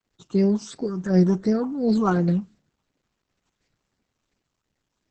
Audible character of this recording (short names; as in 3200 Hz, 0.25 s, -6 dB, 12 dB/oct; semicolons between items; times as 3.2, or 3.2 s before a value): phasing stages 8, 2.8 Hz, lowest notch 540–1100 Hz; a quantiser's noise floor 12-bit, dither none; Opus